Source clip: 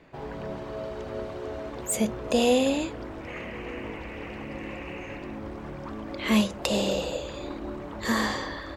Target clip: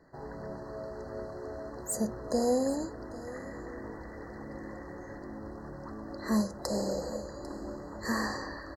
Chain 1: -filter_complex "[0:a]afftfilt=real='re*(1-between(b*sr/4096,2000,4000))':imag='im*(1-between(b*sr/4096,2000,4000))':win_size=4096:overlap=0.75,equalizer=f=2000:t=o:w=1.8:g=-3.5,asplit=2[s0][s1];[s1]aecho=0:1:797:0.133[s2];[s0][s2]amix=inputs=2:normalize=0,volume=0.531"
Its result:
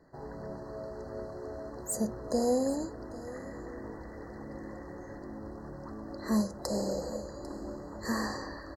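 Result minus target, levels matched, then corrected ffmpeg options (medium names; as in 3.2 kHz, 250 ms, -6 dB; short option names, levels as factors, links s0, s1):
2 kHz band -3.0 dB
-filter_complex "[0:a]afftfilt=real='re*(1-between(b*sr/4096,2000,4000))':imag='im*(1-between(b*sr/4096,2000,4000))':win_size=4096:overlap=0.75,asplit=2[s0][s1];[s1]aecho=0:1:797:0.133[s2];[s0][s2]amix=inputs=2:normalize=0,volume=0.531"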